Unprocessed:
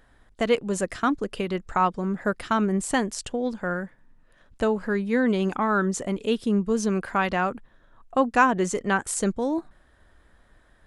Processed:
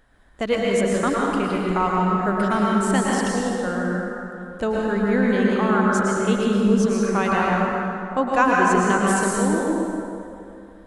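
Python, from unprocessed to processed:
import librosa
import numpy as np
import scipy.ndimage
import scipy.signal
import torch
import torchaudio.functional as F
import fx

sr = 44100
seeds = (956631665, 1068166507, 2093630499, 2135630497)

y = fx.rev_plate(x, sr, seeds[0], rt60_s=2.7, hf_ratio=0.6, predelay_ms=95, drr_db=-4.0)
y = y * librosa.db_to_amplitude(-1.0)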